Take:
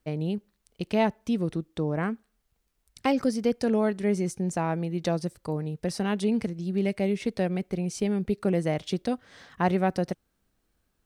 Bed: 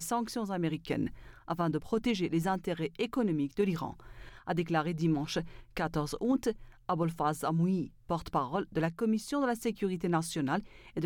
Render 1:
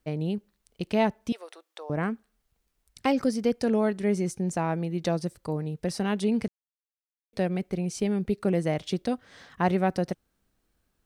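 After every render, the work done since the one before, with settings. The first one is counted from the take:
0:01.32–0:01.90: inverse Chebyshev high-pass filter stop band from 180 Hz, stop band 60 dB
0:06.48–0:07.33: silence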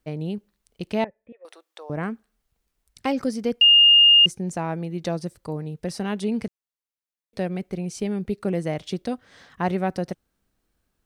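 0:01.04–0:01.45: formant resonators in series e
0:03.61–0:04.26: beep over 2,830 Hz −10 dBFS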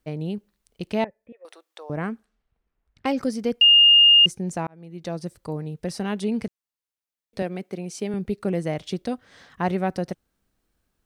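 0:02.03–0:03.09: low-pass that shuts in the quiet parts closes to 1,800 Hz, open at −30.5 dBFS
0:04.67–0:05.36: fade in
0:07.42–0:08.14: high-pass filter 210 Hz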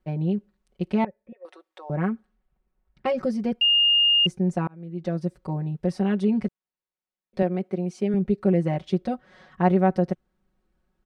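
low-pass filter 1,300 Hz 6 dB per octave
comb filter 5.4 ms, depth 93%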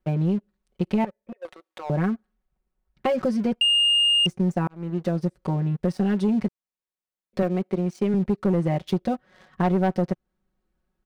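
leveller curve on the samples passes 2
downward compressor 2 to 1, threshold −24 dBFS, peak gain reduction 7.5 dB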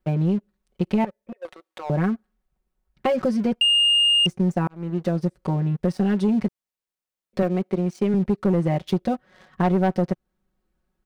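level +1.5 dB

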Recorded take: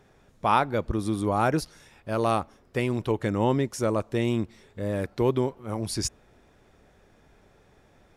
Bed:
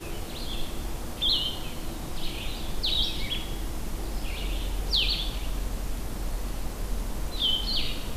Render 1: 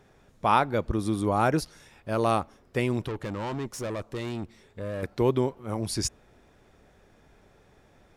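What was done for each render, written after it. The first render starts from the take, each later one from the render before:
0:03.08–0:05.03: tube saturation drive 29 dB, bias 0.5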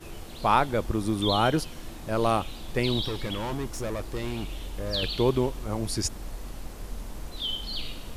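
mix in bed −6 dB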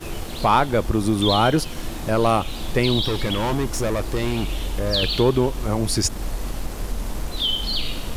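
in parallel at +1.5 dB: downward compressor, threshold −31 dBFS, peak gain reduction 14 dB
on the sum: leveller curve on the samples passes 1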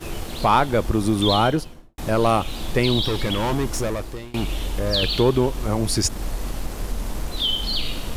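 0:01.34–0:01.98: fade out and dull
0:03.76–0:04.34: fade out, to −23.5 dB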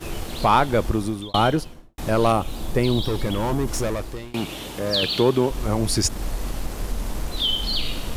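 0:00.87–0:01.34: fade out
0:02.32–0:03.68: parametric band 3,000 Hz −7 dB 2.2 octaves
0:04.33–0:05.51: high-pass filter 130 Hz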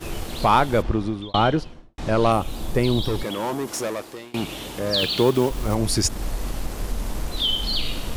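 0:00.81–0:02.30: low-pass filter 3,400 Hz → 6,900 Hz
0:03.23–0:04.33: Bessel high-pass filter 290 Hz
0:04.98–0:05.76: one scale factor per block 5 bits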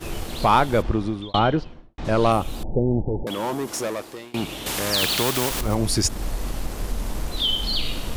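0:01.39–0:02.05: high-frequency loss of the air 120 metres
0:02.63–0:03.27: Chebyshev low-pass filter 900 Hz, order 8
0:04.66–0:05.61: every bin compressed towards the loudest bin 2 to 1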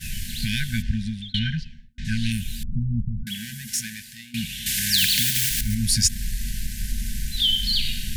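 brick-wall band-stop 240–1,500 Hz
high-shelf EQ 4,000 Hz +5.5 dB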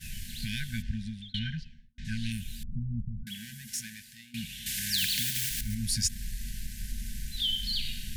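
level −9 dB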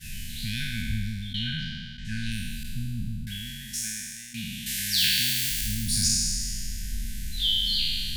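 peak hold with a decay on every bin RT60 2.05 s

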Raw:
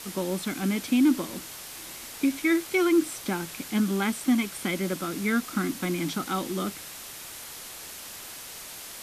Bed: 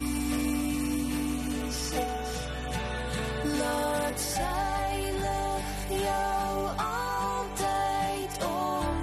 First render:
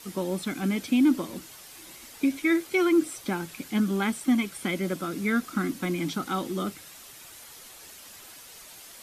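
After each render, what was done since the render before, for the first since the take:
broadband denoise 8 dB, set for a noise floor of −42 dBFS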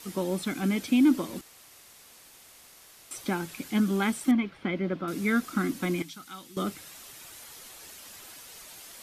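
0:01.41–0:03.11: fill with room tone
0:04.31–0:05.08: high-frequency loss of the air 320 metres
0:06.02–0:06.57: guitar amp tone stack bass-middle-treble 5-5-5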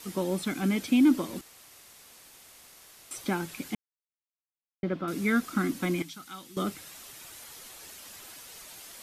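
0:03.75–0:04.83: silence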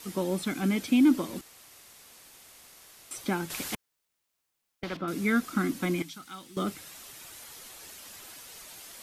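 0:03.50–0:04.97: every bin compressed towards the loudest bin 2 to 1
0:06.18–0:06.68: linearly interpolated sample-rate reduction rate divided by 2×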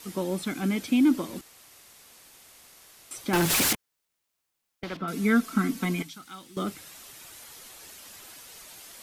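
0:03.33–0:03.73: leveller curve on the samples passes 5
0:05.00–0:06.07: comb filter 4.5 ms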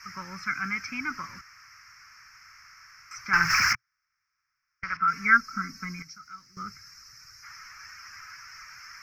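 0:05.37–0:07.44: gain on a spectral selection 540–3,800 Hz −11 dB
drawn EQ curve 120 Hz 0 dB, 320 Hz −24 dB, 710 Hz −19 dB, 1,300 Hz +13 dB, 2,300 Hz +7 dB, 3,600 Hz −29 dB, 5,300 Hz +10 dB, 8,700 Hz −29 dB, 15,000 Hz −13 dB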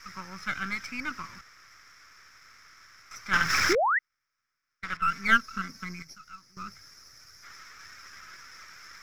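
gain on one half-wave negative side −7 dB
0:03.69–0:03.99: sound drawn into the spectrogram rise 310–2,100 Hz −24 dBFS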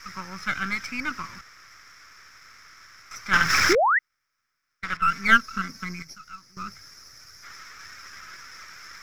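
level +4.5 dB

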